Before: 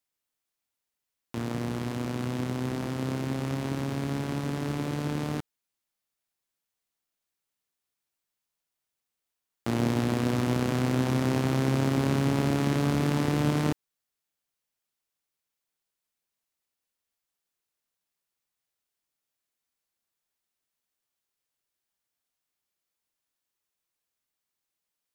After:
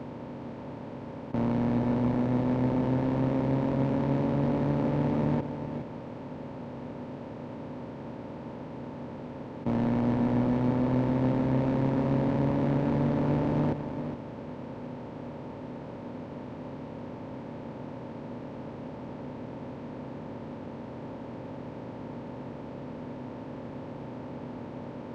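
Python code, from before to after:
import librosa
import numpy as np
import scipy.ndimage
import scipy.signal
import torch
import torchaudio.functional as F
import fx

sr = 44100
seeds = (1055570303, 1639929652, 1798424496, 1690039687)

p1 = fx.bin_compress(x, sr, power=0.2)
p2 = scipy.signal.sosfilt(scipy.signal.butter(4, 49.0, 'highpass', fs=sr, output='sos'), p1)
p3 = fx.peak_eq(p2, sr, hz=240.0, db=5.5, octaves=0.22)
p4 = fx.sample_hold(p3, sr, seeds[0], rate_hz=2000.0, jitter_pct=0)
p5 = p3 + (p4 * librosa.db_to_amplitude(-8.0))
p6 = fx.small_body(p5, sr, hz=(550.0, 900.0), ring_ms=25, db=9)
p7 = np.clip(p6, -10.0 ** (-13.0 / 20.0), 10.0 ** (-13.0 / 20.0))
p8 = fx.spacing_loss(p7, sr, db_at_10k=30)
p9 = p8 + 10.0 ** (-9.0 / 20.0) * np.pad(p8, (int(414 * sr / 1000.0), 0))[:len(p8)]
y = p9 * librosa.db_to_amplitude(-8.0)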